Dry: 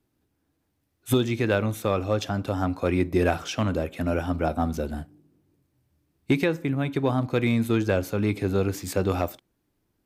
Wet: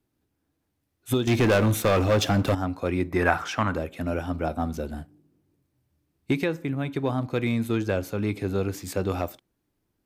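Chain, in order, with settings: 1.27–2.55 sample leveller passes 3; 3.11–3.78 band shelf 1300 Hz +10 dB; gain -2.5 dB

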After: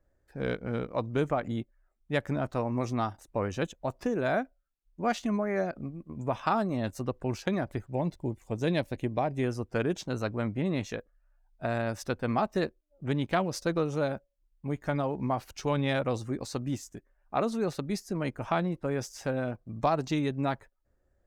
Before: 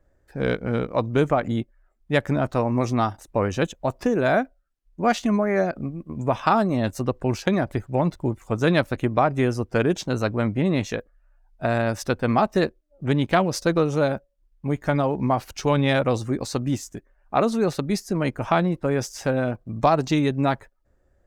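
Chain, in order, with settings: 7.94–9.44 bell 1300 Hz -12 dB 0.51 oct; gain -8 dB

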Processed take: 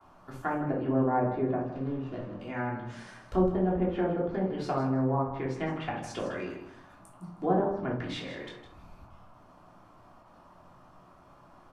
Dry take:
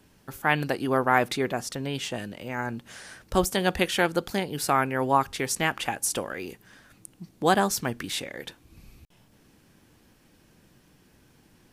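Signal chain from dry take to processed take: 1.62–2.41 median filter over 41 samples; gate with hold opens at -50 dBFS; LPF 3200 Hz 6 dB/oct; treble ducked by the level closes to 680 Hz, closed at -22 dBFS; band noise 560–1300 Hz -56 dBFS; on a send: feedback echo 0.158 s, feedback 17%, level -11 dB; on the sum: shoebox room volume 420 m³, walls furnished, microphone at 3.2 m; gain -8 dB

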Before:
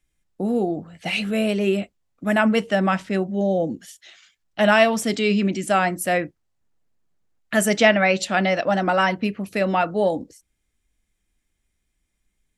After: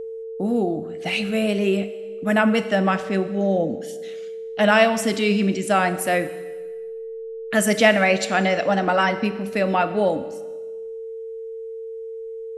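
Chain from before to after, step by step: whine 450 Hz -29 dBFS; Schroeder reverb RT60 1.3 s, combs from 30 ms, DRR 12 dB

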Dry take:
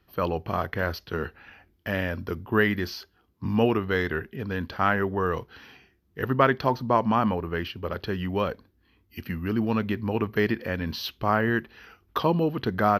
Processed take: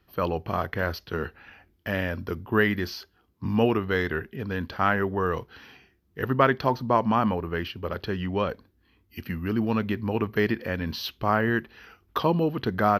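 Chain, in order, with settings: 8.07–8.47 LPF 12000 Hz -> 5900 Hz 12 dB/oct

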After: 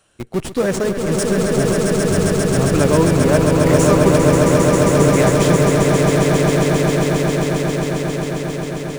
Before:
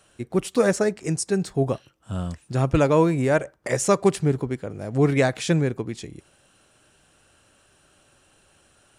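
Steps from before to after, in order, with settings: in parallel at -3 dB: Schmitt trigger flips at -27 dBFS; on the sum: swelling echo 0.134 s, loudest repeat 8, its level -4.5 dB; gain -1 dB

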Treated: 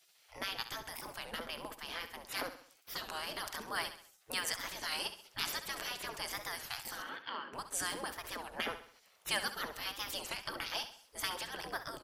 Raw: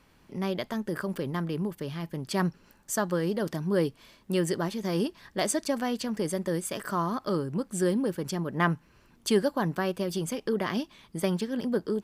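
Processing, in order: spectral gate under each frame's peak -20 dB weak; 7.02–7.53 speaker cabinet 240–3100 Hz, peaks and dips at 250 Hz +8 dB, 740 Hz -7 dB, 2000 Hz +5 dB, 2900 Hz +9 dB; on a send: feedback echo 67 ms, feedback 44%, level -11.5 dB; on the sum: record warp 33 1/3 rpm, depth 160 cents; gain +4 dB

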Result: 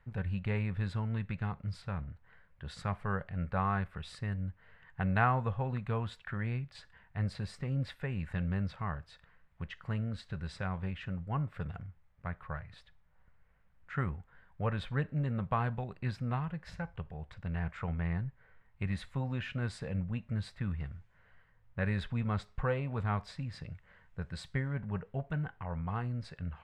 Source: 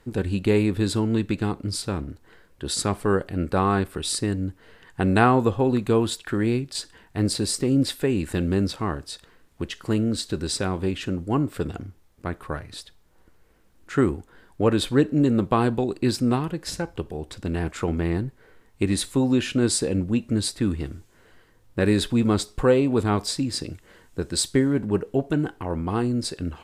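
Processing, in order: EQ curve 170 Hz 0 dB, 320 Hz -22 dB, 570 Hz -5 dB, 2000 Hz 0 dB, 4500 Hz -16 dB, 9800 Hz -27 dB; gain -6.5 dB

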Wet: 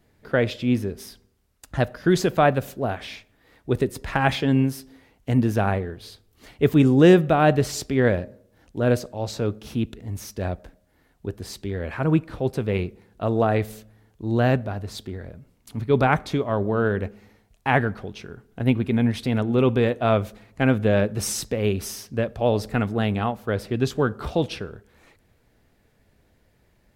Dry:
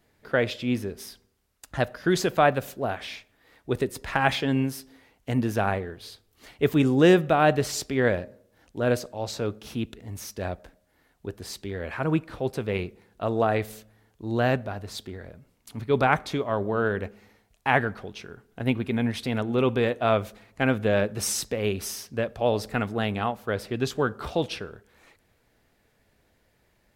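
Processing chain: low shelf 370 Hz +7 dB

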